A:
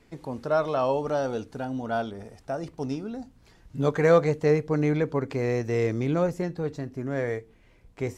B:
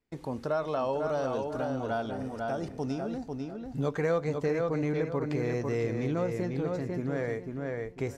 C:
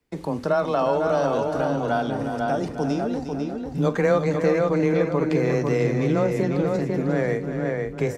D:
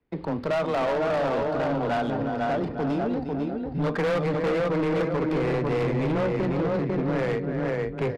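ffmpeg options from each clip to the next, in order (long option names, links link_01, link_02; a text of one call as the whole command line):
ffmpeg -i in.wav -filter_complex "[0:a]agate=range=-24dB:threshold=-53dB:ratio=16:detection=peak,asplit=2[link_01][link_02];[link_02]adelay=496,lowpass=frequency=4100:poles=1,volume=-5.5dB,asplit=2[link_03][link_04];[link_04]adelay=496,lowpass=frequency=4100:poles=1,volume=0.26,asplit=2[link_05][link_06];[link_06]adelay=496,lowpass=frequency=4100:poles=1,volume=0.26[link_07];[link_01][link_03][link_05][link_07]amix=inputs=4:normalize=0,acompressor=threshold=-29dB:ratio=2.5" out.wav
ffmpeg -i in.wav -af "afreqshift=15,aecho=1:1:45|355:0.178|0.335,volume=8dB" out.wav
ffmpeg -i in.wav -af "aresample=11025,asoftclip=type=hard:threshold=-21.5dB,aresample=44100,adynamicsmooth=sensitivity=6:basefreq=2600" out.wav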